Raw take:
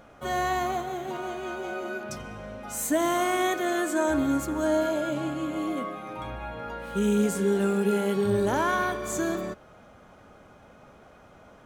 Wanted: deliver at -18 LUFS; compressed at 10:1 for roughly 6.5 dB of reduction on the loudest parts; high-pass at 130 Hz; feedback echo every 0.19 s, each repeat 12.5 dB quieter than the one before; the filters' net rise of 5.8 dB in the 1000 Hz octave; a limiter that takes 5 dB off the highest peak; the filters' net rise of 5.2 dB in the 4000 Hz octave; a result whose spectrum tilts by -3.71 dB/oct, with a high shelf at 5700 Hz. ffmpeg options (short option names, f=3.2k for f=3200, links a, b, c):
-af "highpass=130,equalizer=f=1k:t=o:g=7.5,equalizer=f=4k:t=o:g=4.5,highshelf=f=5.7k:g=5,acompressor=threshold=-23dB:ratio=10,alimiter=limit=-20.5dB:level=0:latency=1,aecho=1:1:190|380|570:0.237|0.0569|0.0137,volume=12dB"